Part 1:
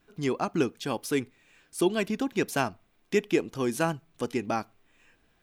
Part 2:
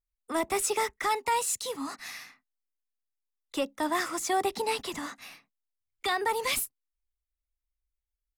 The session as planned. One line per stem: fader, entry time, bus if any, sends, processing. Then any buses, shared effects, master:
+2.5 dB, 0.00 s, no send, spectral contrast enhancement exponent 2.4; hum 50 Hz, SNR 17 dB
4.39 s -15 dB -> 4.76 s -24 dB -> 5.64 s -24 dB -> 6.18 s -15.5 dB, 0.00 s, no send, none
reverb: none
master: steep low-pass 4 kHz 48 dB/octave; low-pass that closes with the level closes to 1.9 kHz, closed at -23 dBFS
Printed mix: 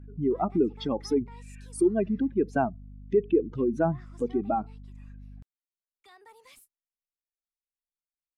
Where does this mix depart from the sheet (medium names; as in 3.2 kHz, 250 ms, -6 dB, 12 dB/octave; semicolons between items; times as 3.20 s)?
stem 2 -15.0 dB -> -25.0 dB; master: missing steep low-pass 4 kHz 48 dB/octave